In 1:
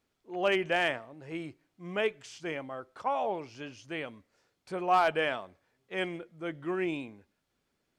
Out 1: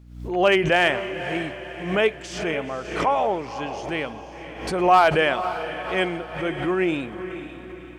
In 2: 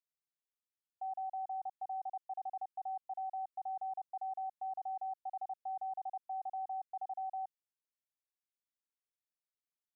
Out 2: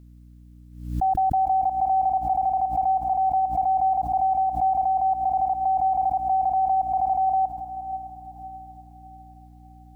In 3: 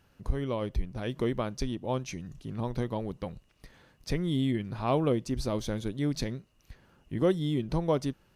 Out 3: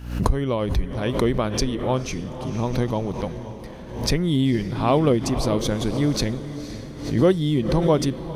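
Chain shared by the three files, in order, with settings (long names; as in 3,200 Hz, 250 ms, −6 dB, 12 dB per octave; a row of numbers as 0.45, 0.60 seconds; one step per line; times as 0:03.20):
mains hum 60 Hz, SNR 23 dB
feedback delay with all-pass diffusion 510 ms, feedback 46%, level −11 dB
background raised ahead of every attack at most 81 dB per second
loudness normalisation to −23 LKFS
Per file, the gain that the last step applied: +9.0, +18.5, +8.0 decibels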